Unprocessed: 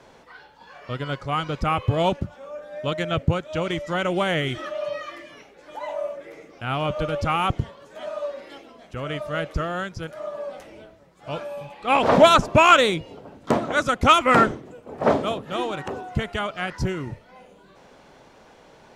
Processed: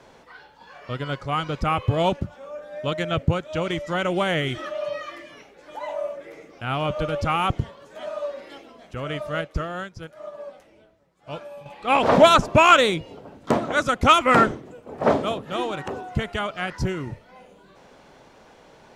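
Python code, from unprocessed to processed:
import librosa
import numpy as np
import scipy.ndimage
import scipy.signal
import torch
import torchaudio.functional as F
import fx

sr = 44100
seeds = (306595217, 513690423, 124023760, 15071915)

y = fx.upward_expand(x, sr, threshold_db=-42.0, expansion=1.5, at=(9.41, 11.66))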